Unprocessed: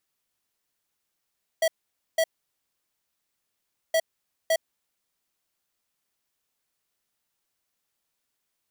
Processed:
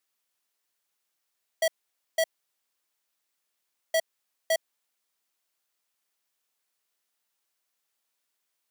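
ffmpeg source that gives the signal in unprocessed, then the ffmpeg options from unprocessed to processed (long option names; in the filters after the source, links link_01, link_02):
-f lavfi -i "aevalsrc='0.0841*(2*lt(mod(650*t,1),0.5)-1)*clip(min(mod(mod(t,2.32),0.56),0.06-mod(mod(t,2.32),0.56))/0.005,0,1)*lt(mod(t,2.32),1.12)':duration=4.64:sample_rate=44100"
-af "highpass=frequency=470:poles=1"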